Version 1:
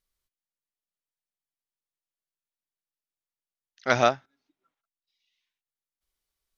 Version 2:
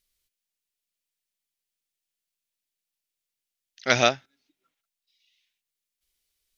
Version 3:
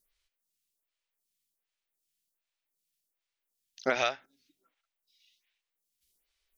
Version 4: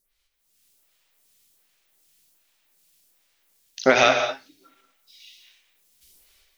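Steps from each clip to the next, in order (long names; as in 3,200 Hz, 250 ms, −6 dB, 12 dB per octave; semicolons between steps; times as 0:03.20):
drawn EQ curve 500 Hz 0 dB, 750 Hz −3 dB, 1,100 Hz −5 dB, 2,500 Hz +7 dB; level +1 dB
in parallel at −0.5 dB: brickwall limiter −12 dBFS, peak gain reduction 10.5 dB; on the sum: downward compressor 6 to 1, threshold −19 dBFS, peak gain reduction 9 dB; phaser with staggered stages 1.3 Hz; level −2 dB
automatic gain control gain up to 16 dB; in parallel at +1.5 dB: brickwall limiter −11 dBFS, peak gain reduction 9.5 dB; on the sum: reverb whose tail is shaped and stops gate 250 ms flat, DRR 4 dB; level −4 dB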